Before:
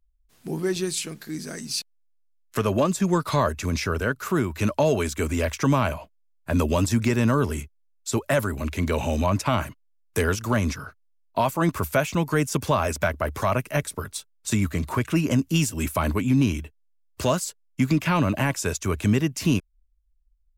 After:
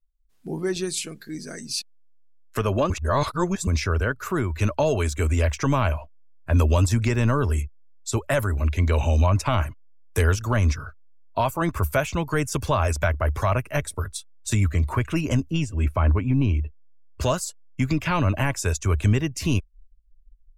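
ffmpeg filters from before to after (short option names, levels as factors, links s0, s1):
-filter_complex "[0:a]asettb=1/sr,asplit=3[s0][s1][s2];[s0]atrim=end=15.504[s3];[s1]atrim=start=15.5:end=17.21,asetpts=PTS-STARTPTS,afade=t=in:d=0.004:c=qsin,afade=t=out:st=1.706:d=0.004:c=qsin,lowpass=f=1900:p=1[s4];[s2]atrim=start=17.206[s5];[s3][s4]acrossfade=d=0.004:c1=hsin:c2=qsin[s6];[s6][s5]acrossfade=d=0.004:c1=qsin:c2=hsin,asplit=3[s7][s8][s9];[s7]atrim=end=2.902[s10];[s8]atrim=start=2.898:end=3.672,asetpts=PTS-STARTPTS,areverse[s11];[s9]atrim=start=3.668[s12];[s10][s11]acrossfade=d=0.004:c1=hsin:c2=hsin[s13];[s13][s12]acrossfade=d=0.004:c1=hsin:c2=hsin,afftdn=nr=13:nf=-45,asubboost=boost=8:cutoff=65"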